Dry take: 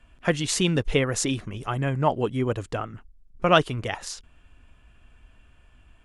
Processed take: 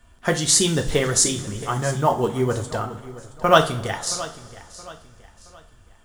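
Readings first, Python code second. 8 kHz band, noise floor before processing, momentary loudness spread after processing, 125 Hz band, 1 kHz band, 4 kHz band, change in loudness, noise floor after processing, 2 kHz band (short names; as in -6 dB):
+11.5 dB, -57 dBFS, 19 LU, +1.5 dB, +5.0 dB, +5.5 dB, +4.5 dB, -53 dBFS, +2.5 dB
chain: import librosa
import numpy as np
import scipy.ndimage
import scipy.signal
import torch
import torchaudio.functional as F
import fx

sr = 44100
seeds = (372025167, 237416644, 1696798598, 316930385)

p1 = fx.high_shelf(x, sr, hz=2000.0, db=9.5)
p2 = fx.quant_float(p1, sr, bits=4)
p3 = fx.peak_eq(p2, sr, hz=2600.0, db=-14.0, octaves=0.56)
p4 = p3 + fx.echo_feedback(p3, sr, ms=672, feedback_pct=37, wet_db=-17.0, dry=0)
p5 = fx.rev_double_slope(p4, sr, seeds[0], early_s=0.35, late_s=2.8, knee_db=-21, drr_db=3.0)
y = F.gain(torch.from_numpy(p5), 1.0).numpy()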